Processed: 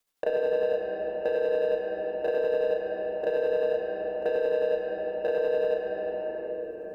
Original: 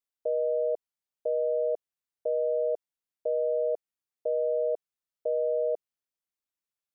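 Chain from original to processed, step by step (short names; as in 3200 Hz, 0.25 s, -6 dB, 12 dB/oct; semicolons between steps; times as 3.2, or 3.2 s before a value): local time reversal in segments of 33 ms; sample leveller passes 2; tremolo 11 Hz, depth 63%; shoebox room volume 170 m³, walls hard, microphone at 0.44 m; three-band squash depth 70%; gain -2 dB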